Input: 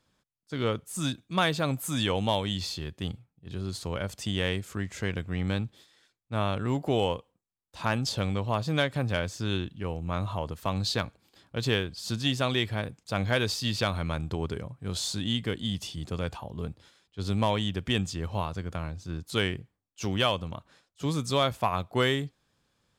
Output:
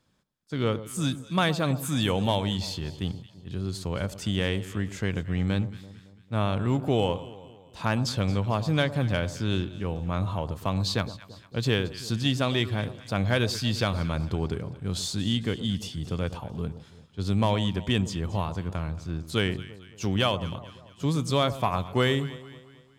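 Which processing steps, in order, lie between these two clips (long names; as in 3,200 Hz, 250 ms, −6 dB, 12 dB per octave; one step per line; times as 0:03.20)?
parametric band 150 Hz +4 dB 2.4 octaves
delay that swaps between a low-pass and a high-pass 112 ms, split 1,100 Hz, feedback 66%, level −13 dB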